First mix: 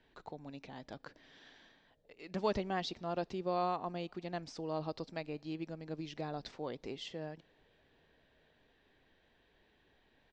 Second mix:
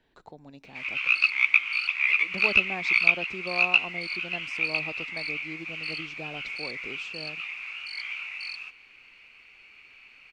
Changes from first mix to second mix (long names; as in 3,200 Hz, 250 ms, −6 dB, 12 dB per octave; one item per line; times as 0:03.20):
background: remove Chebyshev low-pass with heavy ripple 650 Hz, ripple 6 dB
master: remove low-pass filter 7,000 Hz 24 dB per octave